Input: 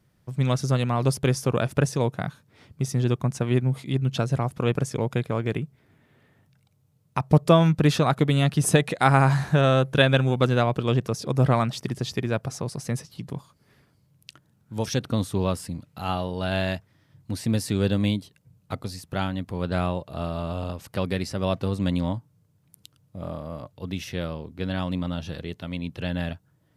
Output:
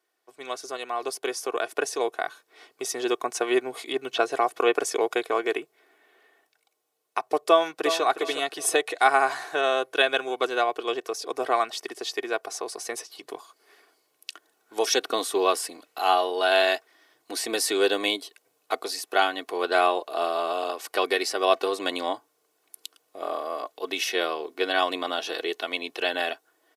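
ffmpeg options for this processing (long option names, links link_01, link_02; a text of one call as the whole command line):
ffmpeg -i in.wav -filter_complex "[0:a]asettb=1/sr,asplit=3[link_01][link_02][link_03];[link_01]atrim=end=3.924[link_04];[link_02]atrim=start=3.92:end=4.79,asetpts=PTS-STARTPTS,afade=type=in:duration=0.004:curve=qsin,afade=type=out:start_time=0.866:duration=0.004:curve=qsin,acrossover=split=3700[link_05][link_06];[link_06]acompressor=threshold=-49dB:ratio=4:attack=1:release=60[link_07];[link_05][link_07]amix=inputs=2:normalize=0[link_08];[link_03]atrim=start=4.786[link_09];[link_04][link_08]acrossfade=duration=0.004:curve1=hsin:curve2=qsin[link_10];[link_10][link_09]acrossfade=duration=0.004:curve1=qsin:curve2=hsin,asplit=2[link_11][link_12];[link_12]afade=type=in:start_time=7.46:duration=0.01,afade=type=out:start_time=8.03:duration=0.01,aecho=0:1:360|720|1080:0.334965|0.10049|0.0301469[link_13];[link_11][link_13]amix=inputs=2:normalize=0,highpass=frequency=420:width=0.5412,highpass=frequency=420:width=1.3066,aecho=1:1:2.7:0.63,dynaudnorm=framelen=830:gausssize=5:maxgain=15dB,volume=-5dB" out.wav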